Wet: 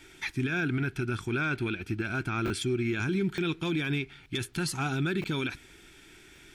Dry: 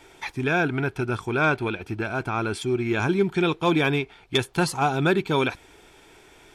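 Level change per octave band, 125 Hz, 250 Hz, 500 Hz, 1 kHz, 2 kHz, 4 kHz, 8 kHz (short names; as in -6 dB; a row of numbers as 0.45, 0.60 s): -3.5, -5.0, -10.0, -11.5, -6.0, -6.0, -2.5 dB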